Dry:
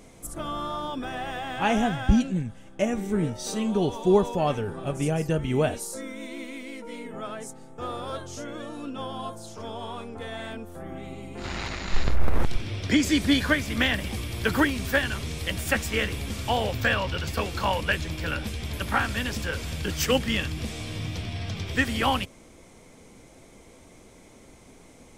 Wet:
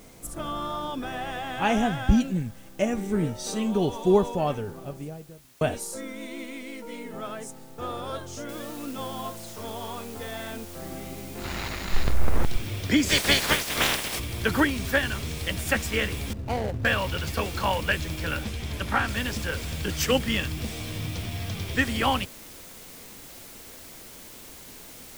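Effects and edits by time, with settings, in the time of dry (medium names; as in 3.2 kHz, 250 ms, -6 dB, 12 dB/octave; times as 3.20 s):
4.10–5.61 s: studio fade out
8.49 s: noise floor step -57 dB -46 dB
13.08–14.18 s: spectral peaks clipped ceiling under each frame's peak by 25 dB
16.33–16.85 s: median filter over 41 samples
18.44–19.08 s: treble shelf 10 kHz -9 dB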